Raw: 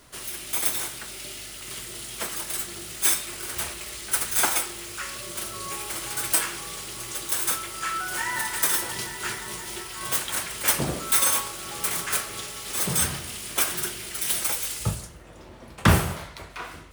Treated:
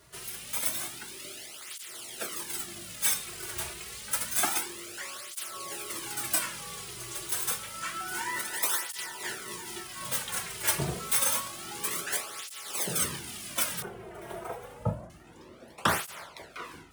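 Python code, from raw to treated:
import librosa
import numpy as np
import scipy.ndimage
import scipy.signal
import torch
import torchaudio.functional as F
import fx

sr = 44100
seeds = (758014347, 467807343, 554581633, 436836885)

y = fx.curve_eq(x, sr, hz=(160.0, 700.0, 4500.0), db=(0, 10, -23), at=(13.82, 15.1))
y = fx.flanger_cancel(y, sr, hz=0.28, depth_ms=4.0)
y = F.gain(torch.from_numpy(y), -2.0).numpy()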